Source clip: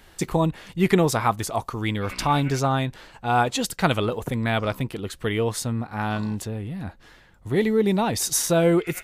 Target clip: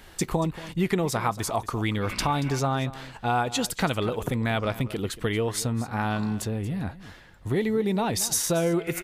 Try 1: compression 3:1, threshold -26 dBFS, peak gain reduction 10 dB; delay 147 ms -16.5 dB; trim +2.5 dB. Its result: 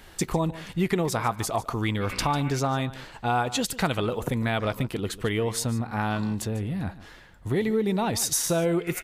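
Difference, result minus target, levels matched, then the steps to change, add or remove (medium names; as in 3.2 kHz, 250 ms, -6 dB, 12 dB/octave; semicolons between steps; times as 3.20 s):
echo 84 ms early
change: delay 231 ms -16.5 dB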